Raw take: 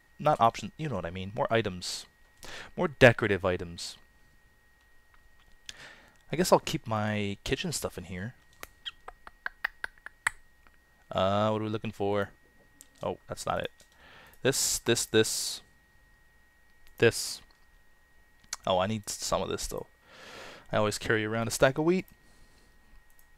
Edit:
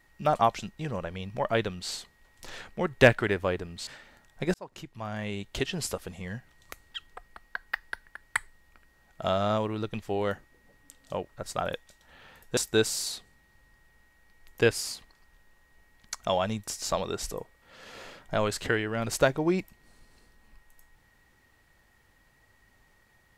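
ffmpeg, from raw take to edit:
ffmpeg -i in.wav -filter_complex "[0:a]asplit=4[link_01][link_02][link_03][link_04];[link_01]atrim=end=3.872[link_05];[link_02]atrim=start=5.778:end=6.45,asetpts=PTS-STARTPTS,afade=type=out:start_time=0.668:duration=0.004:curve=hsin[link_06];[link_03]atrim=start=6.45:end=14.482,asetpts=PTS-STARTPTS,afade=type=in:duration=1.07[link_07];[link_04]atrim=start=14.968[link_08];[link_06][link_07]concat=n=2:v=0:a=1[link_09];[link_05][link_09]acrossfade=duration=0.004:curve1=hsin:curve2=hsin[link_10];[link_10][link_08]acrossfade=duration=0.004:curve1=hsin:curve2=hsin" out.wav

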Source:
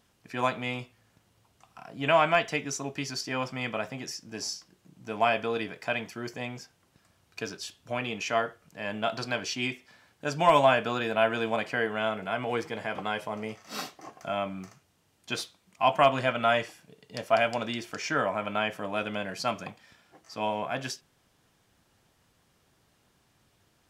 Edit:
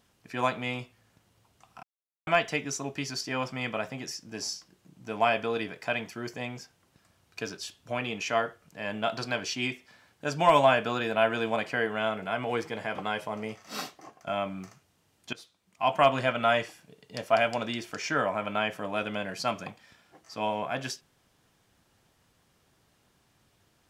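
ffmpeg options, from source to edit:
ffmpeg -i in.wav -filter_complex "[0:a]asplit=5[link_01][link_02][link_03][link_04][link_05];[link_01]atrim=end=1.83,asetpts=PTS-STARTPTS,afade=type=out:start_time=1.826:duration=0.004:curve=hsin[link_06];[link_02]atrim=start=1.83:end=2.27,asetpts=PTS-STARTPTS,volume=0[link_07];[link_03]atrim=start=2.27:end=14.27,asetpts=PTS-STARTPTS,afade=type=in:duration=0.004:curve=hsin,afade=type=out:start_time=11.58:duration=0.42:silence=0.375837[link_08];[link_04]atrim=start=14.27:end=15.33,asetpts=PTS-STARTPTS,afade=type=in:duration=0.004:curve=hsin:silence=0.375837,afade=type=out:start_time=1.056:duration=0.004:curve=hsin:silence=0.0944061[link_09];[link_05]atrim=start=15.33,asetpts=PTS-STARTPTS,afade=type=in:duration=0.74:silence=0.0944061[link_10];[link_06][link_07][link_08][link_09][link_10]concat=n=5:v=0:a=1" out.wav

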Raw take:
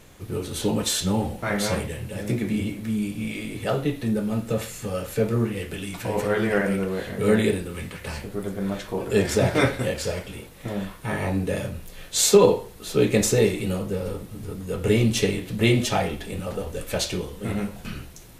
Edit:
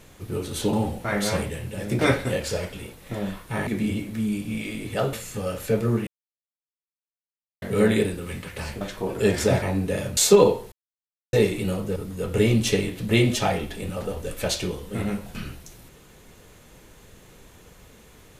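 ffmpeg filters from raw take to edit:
ffmpeg -i in.wav -filter_complex "[0:a]asplit=13[link_01][link_02][link_03][link_04][link_05][link_06][link_07][link_08][link_09][link_10][link_11][link_12][link_13];[link_01]atrim=end=0.732[link_14];[link_02]atrim=start=1.108:end=2.372[link_15];[link_03]atrim=start=9.528:end=11.212[link_16];[link_04]atrim=start=2.368:end=3.832[link_17];[link_05]atrim=start=4.608:end=5.55,asetpts=PTS-STARTPTS,afade=type=out:start_time=0.938:duration=0.004:curve=hsin[link_18];[link_06]atrim=start=5.55:end=7.1,asetpts=PTS-STARTPTS,volume=0[link_19];[link_07]atrim=start=7.1:end=8.292,asetpts=PTS-STARTPTS,afade=type=in:duration=0.004:curve=hsin[link_20];[link_08]atrim=start=8.718:end=9.532[link_21];[link_09]atrim=start=11.208:end=11.762[link_22];[link_10]atrim=start=12.188:end=12.74,asetpts=PTS-STARTPTS,afade=type=out:start_time=0.548:duration=0.004:curve=hsin[link_23];[link_11]atrim=start=12.74:end=13.35,asetpts=PTS-STARTPTS,volume=0[link_24];[link_12]atrim=start=13.35:end=13.982,asetpts=PTS-STARTPTS,afade=type=in:duration=0.004:curve=hsin[link_25];[link_13]atrim=start=14.458[link_26];[link_14][link_15]acrossfade=duration=0.004:curve1=hsin:curve2=hsin[link_27];[link_27][link_16]acrossfade=duration=0.004:curve1=hsin:curve2=hsin[link_28];[link_28][link_17]acrossfade=duration=0.004:curve1=hsin:curve2=hsin[link_29];[link_18][link_19][link_20]concat=n=3:v=0:a=1[link_30];[link_29][link_30]acrossfade=duration=0.004:curve1=hsin:curve2=hsin[link_31];[link_31][link_21]acrossfade=duration=0.004:curve1=hsin:curve2=hsin[link_32];[link_32][link_22]acrossfade=duration=0.004:curve1=hsin:curve2=hsin[link_33];[link_23][link_24][link_25]concat=n=3:v=0:a=1[link_34];[link_33][link_34]acrossfade=duration=0.004:curve1=hsin:curve2=hsin[link_35];[link_35][link_26]acrossfade=duration=0.004:curve1=hsin:curve2=hsin" out.wav

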